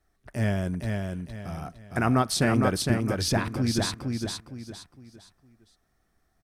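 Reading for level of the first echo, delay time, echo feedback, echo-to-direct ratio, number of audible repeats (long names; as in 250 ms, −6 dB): −4.0 dB, 460 ms, 33%, −3.5 dB, 4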